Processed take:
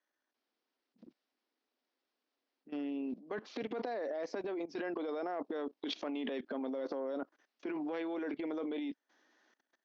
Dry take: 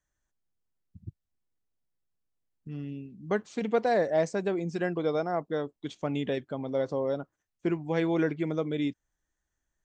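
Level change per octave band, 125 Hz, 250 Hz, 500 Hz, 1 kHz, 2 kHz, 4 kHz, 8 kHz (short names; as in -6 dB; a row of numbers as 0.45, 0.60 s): -25.5 dB, -7.0 dB, -10.0 dB, -9.5 dB, -9.0 dB, -2.5 dB, n/a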